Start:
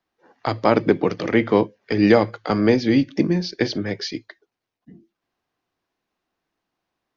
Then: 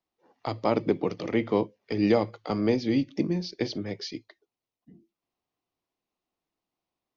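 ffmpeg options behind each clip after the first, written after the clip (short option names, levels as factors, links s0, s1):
-af "equalizer=f=1600:w=3.1:g=-9.5,volume=0.422"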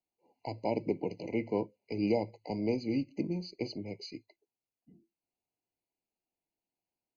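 -af "afftfilt=real='re*eq(mod(floor(b*sr/1024/1000),2),0)':imag='im*eq(mod(floor(b*sr/1024/1000),2),0)':win_size=1024:overlap=0.75,volume=0.447"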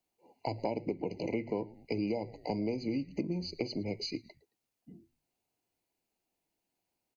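-filter_complex "[0:a]asplit=3[s0][s1][s2];[s1]adelay=110,afreqshift=-93,volume=0.0668[s3];[s2]adelay=220,afreqshift=-186,volume=0.0234[s4];[s0][s3][s4]amix=inputs=3:normalize=0,acompressor=threshold=0.0126:ratio=6,volume=2.37"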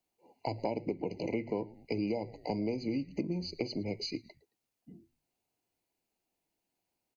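-af anull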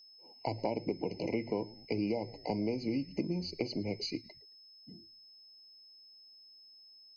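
-af "aeval=exprs='val(0)+0.00178*sin(2*PI*5200*n/s)':c=same"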